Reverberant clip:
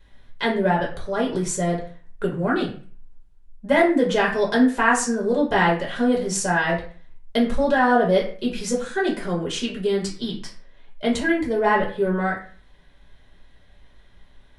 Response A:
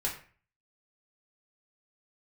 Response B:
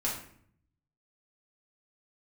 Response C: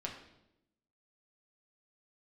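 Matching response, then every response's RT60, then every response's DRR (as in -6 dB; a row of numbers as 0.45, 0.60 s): A; 0.40, 0.60, 0.85 s; -3.0, -6.0, -1.5 dB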